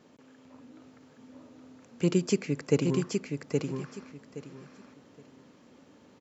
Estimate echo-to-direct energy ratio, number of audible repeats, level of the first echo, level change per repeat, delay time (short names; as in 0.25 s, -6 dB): -4.0 dB, 3, -4.0 dB, -13.5 dB, 0.82 s